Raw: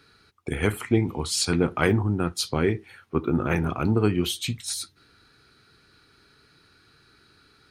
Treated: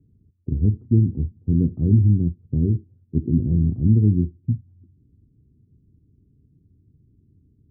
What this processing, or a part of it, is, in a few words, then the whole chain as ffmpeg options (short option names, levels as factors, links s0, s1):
the neighbour's flat through the wall: -af "lowpass=f=260:w=0.5412,lowpass=f=260:w=1.3066,equalizer=f=88:t=o:w=0.99:g=5.5,volume=1.88"